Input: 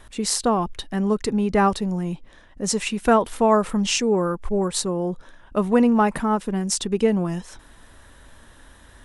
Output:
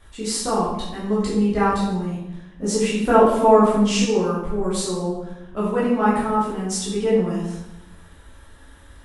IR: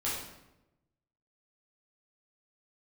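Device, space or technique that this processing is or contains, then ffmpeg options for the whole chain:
bathroom: -filter_complex "[1:a]atrim=start_sample=2205[link_01];[0:a][link_01]afir=irnorm=-1:irlink=0,asettb=1/sr,asplit=3[link_02][link_03][link_04];[link_02]atrim=end=2.624[link_05];[link_03]atrim=start=2.62:end=4.05,asetpts=PTS-STARTPTS,afade=type=in:duration=0.004:curve=qsin,afade=type=out:start_time=1.426:duration=0.004:curve=qsin,equalizer=frequency=320:width_type=o:width=2.3:gain=6[link_06];[link_04]atrim=start=4.046[link_07];[link_05][link_06]acrossfade=duration=0.004:curve1=hsin:curve2=qsin[link_08];[link_08][link_07]acrossfade=duration=0.004:curve1=qsin:curve2=hsin,volume=-6dB"

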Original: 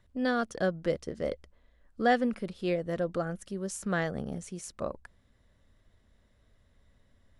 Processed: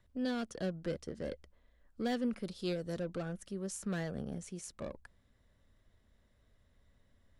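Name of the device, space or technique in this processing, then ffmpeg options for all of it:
one-band saturation: -filter_complex "[0:a]asettb=1/sr,asplit=3[link_01][link_02][link_03];[link_01]atrim=end=2.434[link_04];[link_02]atrim=start=2.43:end=2.99,asetpts=PTS-STARTPTS,afade=type=in:duration=0.004:curve=qsin,afade=type=out:start_time=0.556:duration=0.004:curve=qsin,highshelf=frequency=3300:width_type=q:width=1.5:gain=7[link_05];[link_03]atrim=start=2.986[link_06];[link_04][link_05]acrossfade=duration=0.004:curve1=hsin:curve2=qsin[link_07];[link_07][link_06]acrossfade=duration=0.004:curve1=qsin:curve2=hsin,acrossover=split=410|2600[link_08][link_09][link_10];[link_09]asoftclip=type=tanh:threshold=-38dB[link_11];[link_08][link_11][link_10]amix=inputs=3:normalize=0,volume=-4dB"

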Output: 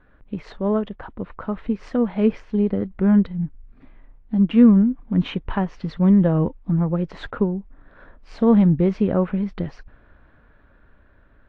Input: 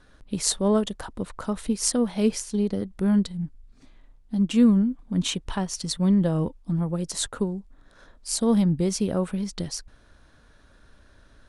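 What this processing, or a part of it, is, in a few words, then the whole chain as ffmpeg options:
action camera in a waterproof case: -af "lowpass=frequency=2400:width=0.5412,lowpass=frequency=2400:width=1.3066,dynaudnorm=framelen=580:gausssize=7:maxgain=6dB" -ar 24000 -c:a aac -b:a 48k

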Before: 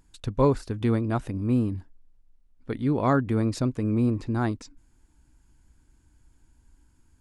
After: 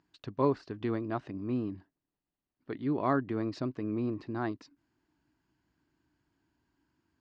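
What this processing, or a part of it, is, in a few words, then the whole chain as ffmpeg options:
kitchen radio: -af "highpass=220,equalizer=frequency=230:width_type=q:width=4:gain=-7,equalizer=frequency=500:width_type=q:width=4:gain=-9,equalizer=frequency=860:width_type=q:width=4:gain=-5,equalizer=frequency=1400:width_type=q:width=4:gain=-5,equalizer=frequency=2300:width_type=q:width=4:gain=-6,equalizer=frequency=3500:width_type=q:width=4:gain=-7,lowpass=frequency=4300:width=0.5412,lowpass=frequency=4300:width=1.3066,volume=-1.5dB"

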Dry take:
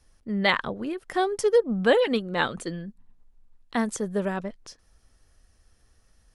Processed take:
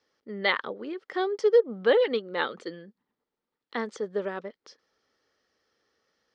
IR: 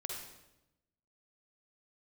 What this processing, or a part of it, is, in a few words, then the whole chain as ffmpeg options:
phone earpiece: -af "highpass=430,equalizer=frequency=440:width_type=q:width=4:gain=3,equalizer=frequency=690:width_type=q:width=4:gain=-9,equalizer=frequency=1000:width_type=q:width=4:gain=-6,equalizer=frequency=1600:width_type=q:width=4:gain=-5,equalizer=frequency=2600:width_type=q:width=4:gain=-8,equalizer=frequency=3800:width_type=q:width=4:gain=-4,lowpass=frequency=4500:width=0.5412,lowpass=frequency=4500:width=1.3066,volume=1.5dB"

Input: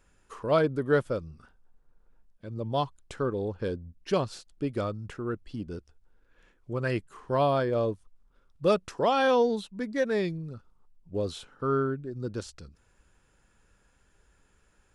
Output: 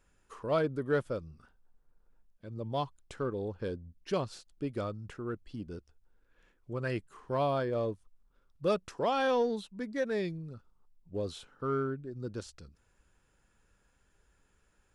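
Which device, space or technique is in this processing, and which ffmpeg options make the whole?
parallel distortion: -filter_complex "[0:a]asplit=2[link_01][link_02];[link_02]asoftclip=type=hard:threshold=-24dB,volume=-13.5dB[link_03];[link_01][link_03]amix=inputs=2:normalize=0,volume=-6.5dB"

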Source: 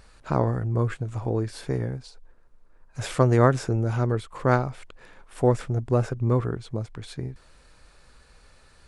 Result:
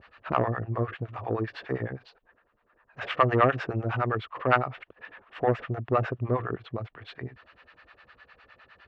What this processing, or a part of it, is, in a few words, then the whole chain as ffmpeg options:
guitar amplifier with harmonic tremolo: -filter_complex "[0:a]acrossover=split=590[link_01][link_02];[link_01]aeval=exprs='val(0)*(1-1/2+1/2*cos(2*PI*9.8*n/s))':channel_layout=same[link_03];[link_02]aeval=exprs='val(0)*(1-1/2-1/2*cos(2*PI*9.8*n/s))':channel_layout=same[link_04];[link_03][link_04]amix=inputs=2:normalize=0,asoftclip=type=tanh:threshold=-17dB,highpass=110,equalizer=frequency=150:width_type=q:width=4:gain=-10,equalizer=frequency=240:width_type=q:width=4:gain=-3,equalizer=frequency=690:width_type=q:width=4:gain=5,equalizer=frequency=1200:width_type=q:width=4:gain=7,equalizer=frequency=1800:width_type=q:width=4:gain=9,equalizer=frequency=2800:width_type=q:width=4:gain=8,lowpass=frequency=3500:width=0.5412,lowpass=frequency=3500:width=1.3066,volume=3.5dB"

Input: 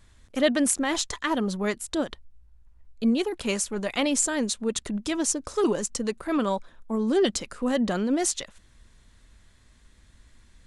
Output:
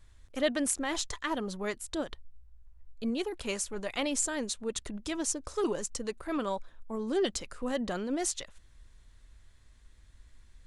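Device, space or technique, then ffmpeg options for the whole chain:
low shelf boost with a cut just above: -af "lowshelf=frequency=70:gain=8,equalizer=frequency=210:width_type=o:width=0.79:gain=-5.5,volume=-6dB"

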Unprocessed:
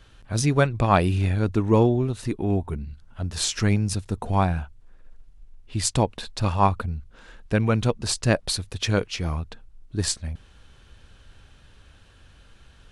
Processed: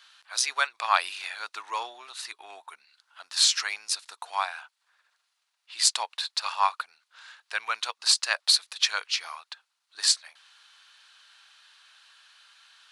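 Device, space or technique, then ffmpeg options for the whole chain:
headphones lying on a table: -af "highpass=frequency=1000:width=0.5412,highpass=frequency=1000:width=1.3066,equalizer=frequency=4300:width_type=o:width=0.59:gain=7,volume=1.5dB"

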